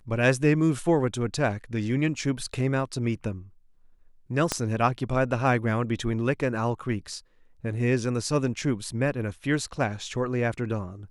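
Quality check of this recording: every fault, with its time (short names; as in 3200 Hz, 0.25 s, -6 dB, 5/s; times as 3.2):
4.52 pop -9 dBFS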